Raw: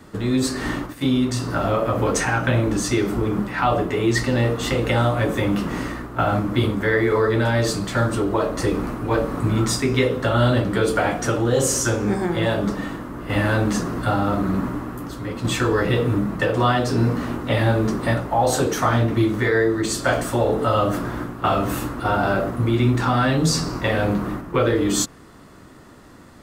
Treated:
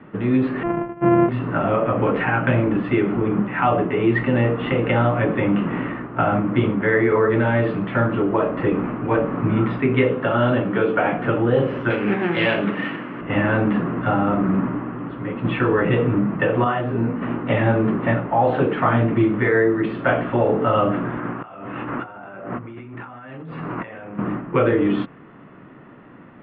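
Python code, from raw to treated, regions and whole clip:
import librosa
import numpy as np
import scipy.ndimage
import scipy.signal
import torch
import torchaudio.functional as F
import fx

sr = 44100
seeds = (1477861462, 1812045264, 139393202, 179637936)

y = fx.chain(x, sr, fx.sample_sort(block=128),
    fx.lowpass(hz=1200.0, slope=12),
    fx.comb(ms=5.9, depth=0.47), at=(0.63, 1.29))
y = fx.chain(y, sr, fx.highpass(hz=170.0, slope=6),
    fx.notch(hz=2000.0, q=18.0), at=(10.13, 11.12))
y = fx.chain(y, sr, fx.self_delay(depth_ms=0.12),
    fx.weighting(curve='D'),
    fx.resample_bad(factor=6, down='filtered', up='zero_stuff'), at=(11.9, 13.21))
y = fx.chain(y, sr, fx.high_shelf(hz=4200.0, db=-7.5),
    fx.detune_double(cents=28), at=(16.64, 17.22))
y = fx.chain(y, sr, fx.lowpass(hz=2900.0, slope=12),
    fx.low_shelf(hz=480.0, db=-8.0),
    fx.over_compress(threshold_db=-35.0, ratio=-1.0), at=(21.19, 24.19))
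y = scipy.signal.sosfilt(scipy.signal.butter(8, 2900.0, 'lowpass', fs=sr, output='sos'), y)
y = fx.low_shelf_res(y, sr, hz=100.0, db=-11.0, q=1.5)
y = F.gain(torch.from_numpy(y), 1.0).numpy()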